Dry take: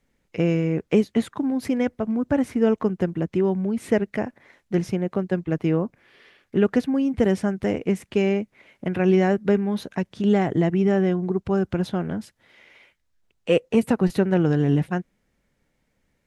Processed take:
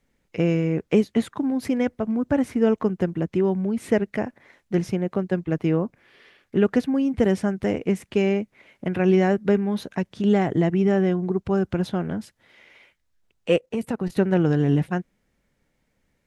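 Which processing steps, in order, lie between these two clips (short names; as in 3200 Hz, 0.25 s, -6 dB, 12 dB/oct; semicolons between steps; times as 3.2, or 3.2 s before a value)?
13.56–14.17 level quantiser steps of 12 dB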